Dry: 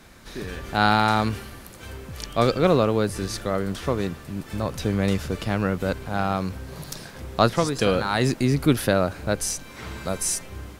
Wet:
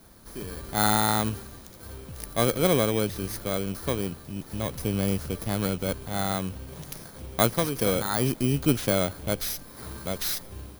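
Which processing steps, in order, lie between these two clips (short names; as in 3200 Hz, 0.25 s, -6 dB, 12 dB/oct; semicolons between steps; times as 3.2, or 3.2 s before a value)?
FFT order left unsorted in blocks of 16 samples; gain -3.5 dB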